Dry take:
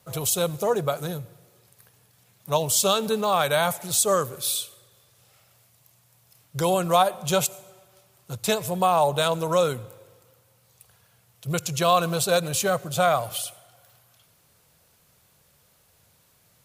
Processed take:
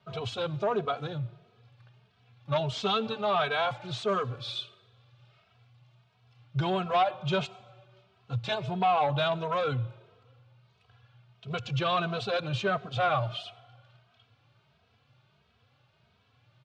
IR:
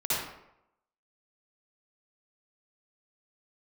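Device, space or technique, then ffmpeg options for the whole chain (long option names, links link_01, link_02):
barber-pole flanger into a guitar amplifier: -filter_complex "[0:a]asplit=2[link_01][link_02];[link_02]adelay=2.8,afreqshift=1.5[link_03];[link_01][link_03]amix=inputs=2:normalize=1,asoftclip=type=tanh:threshold=-20dB,highpass=91,equalizer=frequency=120:width_type=q:width=4:gain=8,equalizer=frequency=170:width_type=q:width=4:gain=-8,equalizer=frequency=320:width_type=q:width=4:gain=-6,equalizer=frequency=520:width_type=q:width=4:gain=-8,equalizer=frequency=950:width_type=q:width=4:gain=-4,equalizer=frequency=1900:width_type=q:width=4:gain=-7,lowpass=frequency=3500:width=0.5412,lowpass=frequency=3500:width=1.3066,volume=3.5dB"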